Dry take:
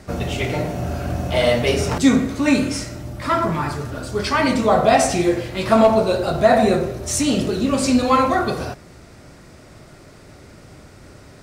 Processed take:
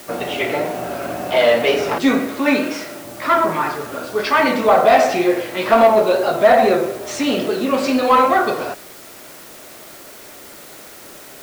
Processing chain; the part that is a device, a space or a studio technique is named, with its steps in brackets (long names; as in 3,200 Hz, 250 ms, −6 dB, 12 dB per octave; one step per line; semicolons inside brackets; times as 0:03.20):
tape answering machine (band-pass filter 360–3,300 Hz; soft clipping −9 dBFS, distortion −17 dB; tape wow and flutter; white noise bed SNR 23 dB)
0:02.39–0:03.05: high-pass filter 150 Hz
level +5.5 dB